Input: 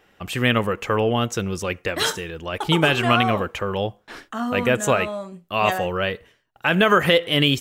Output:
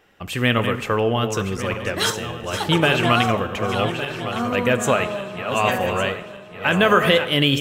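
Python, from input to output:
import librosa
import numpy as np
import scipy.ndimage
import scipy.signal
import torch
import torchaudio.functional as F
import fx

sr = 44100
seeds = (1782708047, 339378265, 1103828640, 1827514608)

y = fx.reverse_delay_fb(x, sr, ms=579, feedback_pct=61, wet_db=-8)
y = fx.rev_plate(y, sr, seeds[0], rt60_s=1.3, hf_ratio=0.75, predelay_ms=0, drr_db=13.0)
y = fx.band_widen(y, sr, depth_pct=40, at=(1.57, 2.44))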